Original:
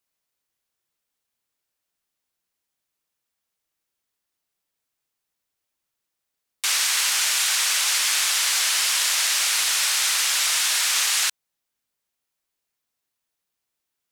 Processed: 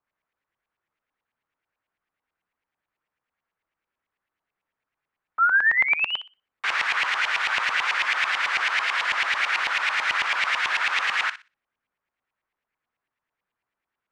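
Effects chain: painted sound rise, 5.38–6.21 s, 1.3–3.2 kHz -25 dBFS; LFO low-pass saw up 9.1 Hz 940–2500 Hz; thinning echo 61 ms, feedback 23%, high-pass 1 kHz, level -12 dB; trim +1 dB

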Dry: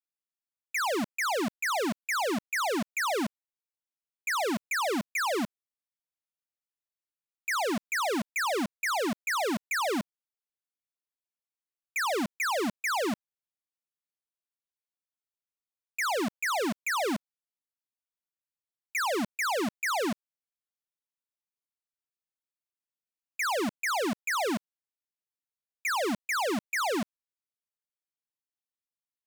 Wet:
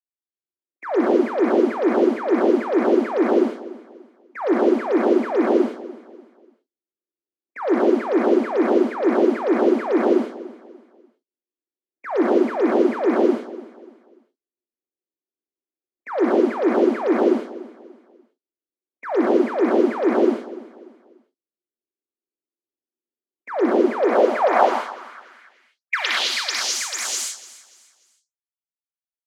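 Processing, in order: delay that grows with frequency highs late, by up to 250 ms; level-controlled noise filter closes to 390 Hz, open at -27 dBFS; in parallel at -4 dB: Schmitt trigger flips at -36.5 dBFS; on the sum: steep high-pass 230 Hz 36 dB/octave; on a send: feedback delay 293 ms, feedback 32%, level -17.5 dB; on the sum: level rider gain up to 14.5 dB; gated-style reverb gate 240 ms rising, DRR -4.5 dB; band-pass sweep 340 Hz -> 7.1 kHz, 23.80–26.93 s

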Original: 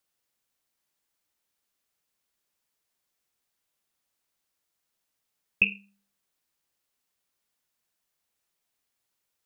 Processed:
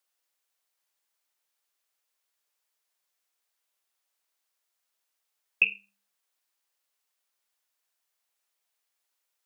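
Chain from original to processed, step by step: high-pass 520 Hz 12 dB/octave

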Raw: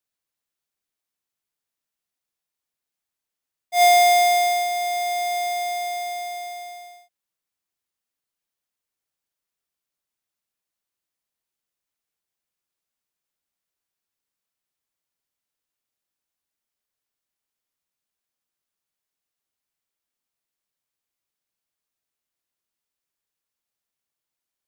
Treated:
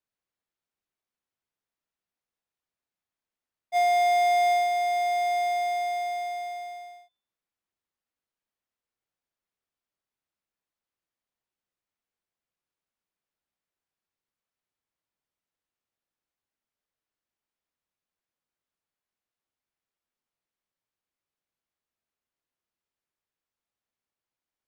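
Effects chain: low-pass 2.1 kHz 6 dB/octave; de-hum 147.2 Hz, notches 34; peak limiter -19.5 dBFS, peak gain reduction 7.5 dB

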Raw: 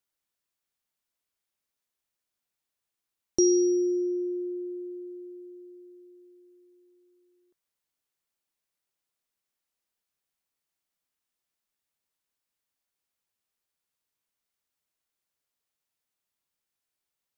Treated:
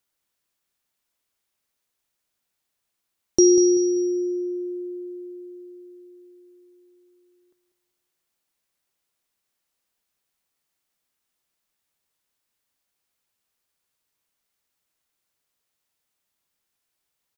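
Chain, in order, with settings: feedback delay 193 ms, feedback 36%, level -11 dB; trim +6.5 dB

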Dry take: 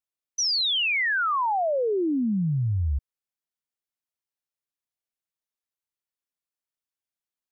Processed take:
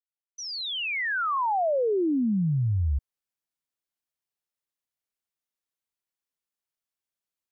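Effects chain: fade-in on the opening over 1.67 s; 0.66–1.37 s: frequency shift -32 Hz

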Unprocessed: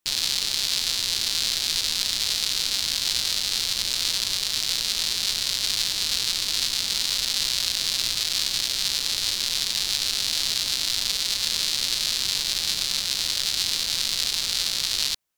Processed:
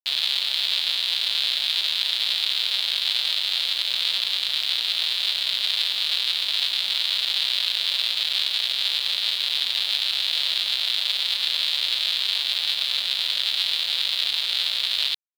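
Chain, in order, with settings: Chebyshev high-pass 550 Hz, order 3; resonant high shelf 4.7 kHz -10 dB, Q 3; bit crusher 7-bit

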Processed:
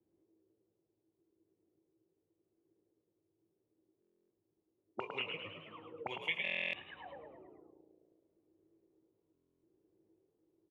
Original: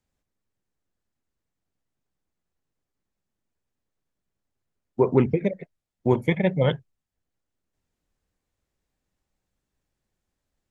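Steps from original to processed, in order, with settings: pitch shift switched off and on -11.5 st, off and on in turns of 596 ms; doubling 19 ms -8.5 dB; de-hum 89.79 Hz, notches 17; reverberation RT60 1.4 s, pre-delay 71 ms, DRR 14.5 dB; auto-wah 330–2800 Hz, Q 20, up, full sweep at -25 dBFS; fifteen-band graphic EQ 100 Hz +10 dB, 250 Hz -7 dB, 1.6 kHz -5 dB; frequency-shifting echo 106 ms, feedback 48%, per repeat +57 Hz, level -6 dB; buffer glitch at 4.00/6.43/9.33 s, samples 1024, times 12; three bands compressed up and down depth 40%; trim +16.5 dB

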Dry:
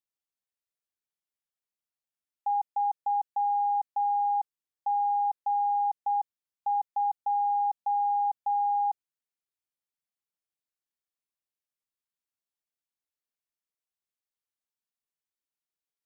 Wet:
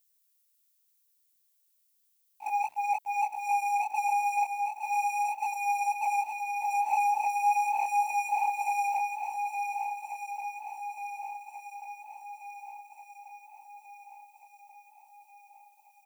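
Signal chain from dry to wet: spectrogram pixelated in time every 100 ms; comb 3.4 ms, depth 39%; dynamic bell 740 Hz, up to -7 dB, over -40 dBFS, Q 2.9; compression 3:1, threshold -36 dBFS, peak gain reduction 5 dB; slow attack 126 ms; waveshaping leveller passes 5; static phaser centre 810 Hz, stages 8; bit crusher 11-bit; chorus voices 2, 0.36 Hz, delay 21 ms, depth 4.7 ms; shuffle delay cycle 1437 ms, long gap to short 1.5:1, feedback 52%, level -7 dB; added noise violet -78 dBFS; delay 738 ms -23 dB; trim +7 dB

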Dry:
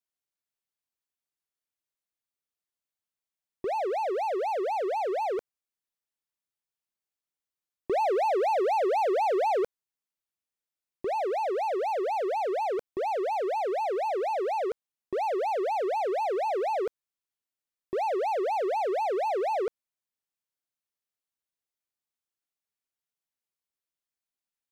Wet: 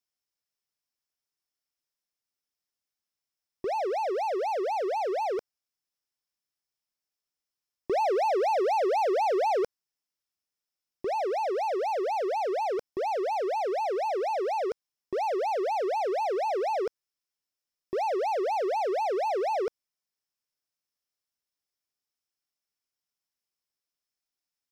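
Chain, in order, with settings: peaking EQ 5.3 kHz +11.5 dB 0.22 oct

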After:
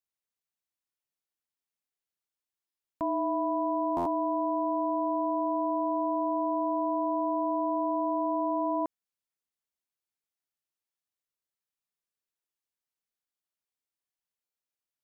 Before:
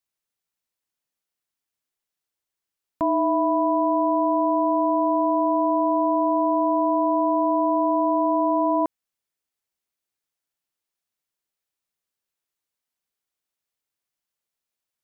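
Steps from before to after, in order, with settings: buffer glitch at 2.66/3.96/14.44 s, samples 512, times 8; trim -8 dB

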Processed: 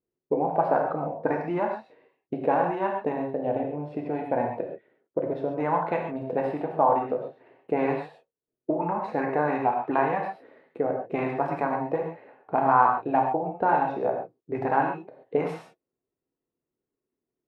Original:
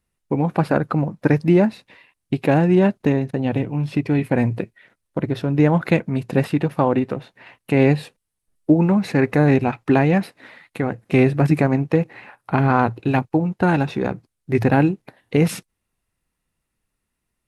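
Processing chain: auto-wah 370–1000 Hz, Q 3, up, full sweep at -11.5 dBFS; gated-style reverb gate 160 ms flat, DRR 1 dB; trim +2 dB

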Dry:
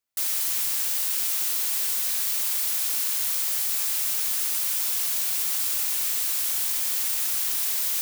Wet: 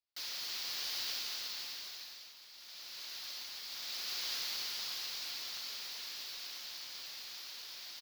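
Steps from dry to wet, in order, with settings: Doppler pass-by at 2.43 s, 14 m/s, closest 2.8 m; delay 1142 ms -11.5 dB; compressor with a negative ratio -44 dBFS, ratio -1; resonant high shelf 6.5 kHz -12.5 dB, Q 3; trim +5.5 dB

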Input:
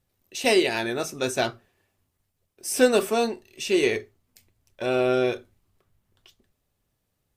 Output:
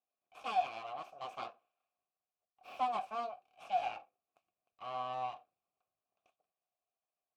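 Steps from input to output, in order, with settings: full-wave rectifier; vowel filter a; trim -2 dB

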